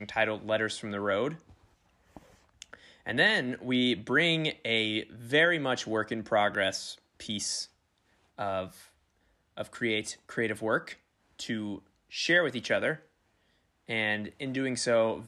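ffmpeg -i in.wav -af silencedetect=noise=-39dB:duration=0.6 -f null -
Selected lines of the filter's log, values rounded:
silence_start: 1.35
silence_end: 2.17 | silence_duration: 0.82
silence_start: 7.65
silence_end: 8.38 | silence_duration: 0.74
silence_start: 8.68
silence_end: 9.58 | silence_duration: 0.90
silence_start: 12.96
silence_end: 13.89 | silence_duration: 0.93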